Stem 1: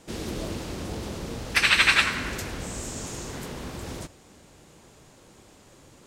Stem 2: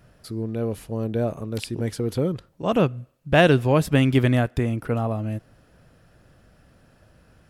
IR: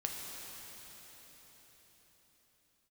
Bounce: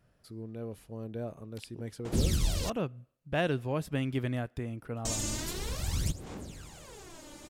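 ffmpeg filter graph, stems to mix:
-filter_complex "[0:a]acrossover=split=170|3000[a][b][c];[b]acompressor=threshold=-53dB:ratio=2[d];[a][d][c]amix=inputs=3:normalize=0,aphaser=in_gain=1:out_gain=1:delay=3.4:decay=0.73:speed=0.47:type=sinusoidal,adelay=2050,volume=2dB,asplit=3[e][f][g];[e]atrim=end=2.7,asetpts=PTS-STARTPTS,afade=t=out:st=2.696:d=0.004:c=hsin[h];[f]atrim=start=2.7:end=5.05,asetpts=PTS-STARTPTS,volume=0[i];[g]atrim=start=5.05,asetpts=PTS-STARTPTS,afade=t=in:d=0.004:c=hsin[j];[h][i][j]concat=n=3:v=0:a=1[k];[1:a]volume=-13.5dB[l];[k][l]amix=inputs=2:normalize=0"

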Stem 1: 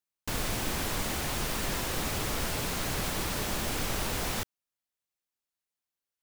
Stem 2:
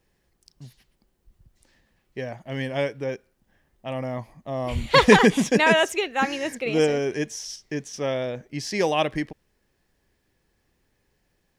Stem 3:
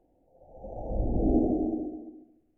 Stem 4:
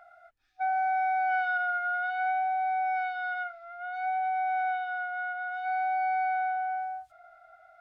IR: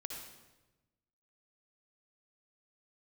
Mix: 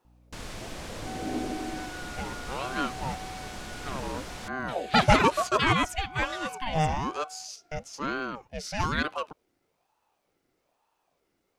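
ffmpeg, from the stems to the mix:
-filter_complex "[0:a]lowpass=8.2k,aeval=exprs='val(0)+0.00316*(sin(2*PI*60*n/s)+sin(2*PI*2*60*n/s)/2+sin(2*PI*3*60*n/s)/3+sin(2*PI*4*60*n/s)/4+sin(2*PI*5*60*n/s)/5)':c=same,adelay=50,volume=-7.5dB[a];[1:a]aeval=exprs='val(0)*sin(2*PI*610*n/s+610*0.5/1.1*sin(2*PI*1.1*n/s))':c=same,volume=-2.5dB[b];[2:a]highpass=110,volume=-8dB[c];[3:a]adelay=450,volume=-14.5dB[d];[a][b][c][d]amix=inputs=4:normalize=0"

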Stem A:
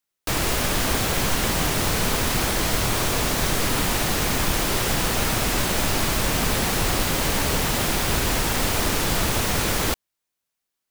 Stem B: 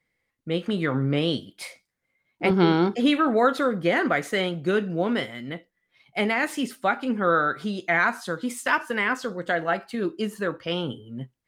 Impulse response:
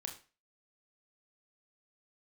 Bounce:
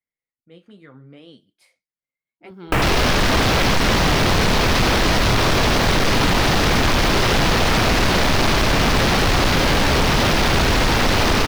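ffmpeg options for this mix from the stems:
-filter_complex "[0:a]afwtdn=0.0282,aeval=exprs='0.355*sin(PI/2*2.82*val(0)/0.355)':c=same,adelay=2450,volume=3dB[a];[1:a]flanger=delay=2.7:depth=8.9:regen=-52:speed=0.81:shape=triangular,volume=-16dB[b];[a][b]amix=inputs=2:normalize=0,acompressor=threshold=-19dB:ratio=2"

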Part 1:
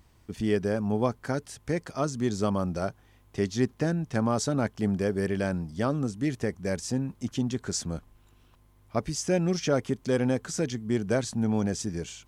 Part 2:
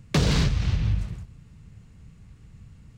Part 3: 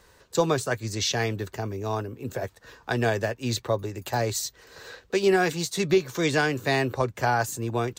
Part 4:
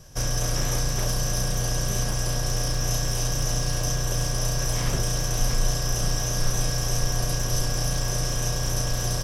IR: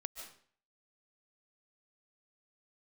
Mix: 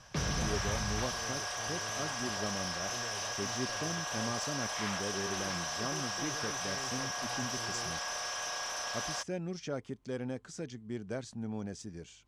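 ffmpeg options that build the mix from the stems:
-filter_complex "[0:a]highshelf=f=5.3k:g=12,volume=-12.5dB[a];[1:a]volume=-14dB[b];[2:a]asoftclip=type=tanh:threshold=-27.5dB,volume=-15dB[c];[3:a]highpass=f=740:w=0.5412,highpass=f=740:w=1.3066,highshelf=f=6.5k:g=-4,asoftclip=type=tanh:threshold=-32dB,volume=3dB[d];[a][b][c][d]amix=inputs=4:normalize=0,adynamicsmooth=sensitivity=1:basefreq=5k"

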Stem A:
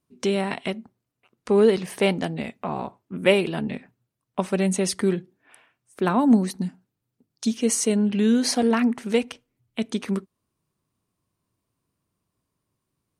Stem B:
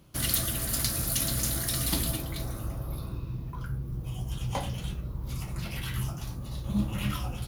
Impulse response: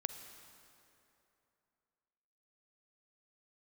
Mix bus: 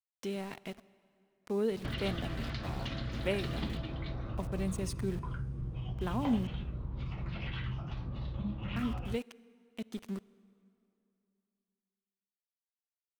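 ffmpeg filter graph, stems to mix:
-filter_complex "[0:a]aeval=exprs='val(0)*gte(abs(val(0)),0.0266)':c=same,lowshelf=f=150:g=8,volume=-18.5dB,asplit=3[a][b][c];[a]atrim=end=6.47,asetpts=PTS-STARTPTS,afade=t=out:st=6.466:d=0.004:c=hsin[d];[b]atrim=start=6.47:end=8.76,asetpts=PTS-STARTPTS,volume=0[e];[c]atrim=start=8.76,asetpts=PTS-STARTPTS,afade=t=in:d=0.004:c=hsin[f];[d][e][f]concat=n=3:v=0:a=1,asplit=2[g][h];[h]volume=-8.5dB[i];[1:a]lowpass=f=3.4k:w=0.5412,lowpass=f=3.4k:w=1.3066,acompressor=threshold=-38dB:ratio=4,adelay=1700,volume=2.5dB[j];[2:a]atrim=start_sample=2205[k];[i][k]afir=irnorm=-1:irlink=0[l];[g][j][l]amix=inputs=3:normalize=0"

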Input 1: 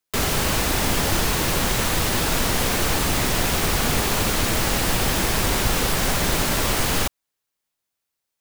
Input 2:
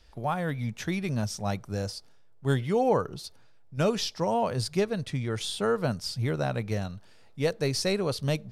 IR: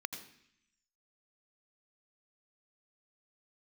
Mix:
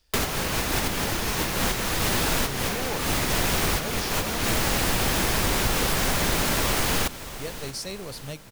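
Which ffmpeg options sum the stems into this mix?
-filter_complex "[0:a]volume=1dB,asplit=3[a][b][c];[b]volume=-14.5dB[d];[c]volume=-18dB[e];[1:a]highshelf=f=4.7k:g=12,volume=-10dB,asplit=3[f][g][h];[f]atrim=end=4.38,asetpts=PTS-STARTPTS,afade=t=out:st=4.376:d=0.004:c=hsin[i];[g]atrim=start=4.38:end=7.31,asetpts=PTS-STARTPTS,volume=0[j];[h]atrim=start=7.31,asetpts=PTS-STARTPTS,afade=t=in:d=0.004:c=hsin[k];[i][j][k]concat=n=3:v=0:a=1,asplit=2[l][m];[m]apad=whole_len=370589[n];[a][n]sidechaincompress=threshold=-46dB:ratio=4:attack=16:release=130[o];[2:a]atrim=start_sample=2205[p];[d][p]afir=irnorm=-1:irlink=0[q];[e]aecho=0:1:627|1254|1881|2508|3135|3762|4389|5016:1|0.52|0.27|0.141|0.0731|0.038|0.0198|0.0103[r];[o][l][q][r]amix=inputs=4:normalize=0,acompressor=threshold=-23dB:ratio=2"

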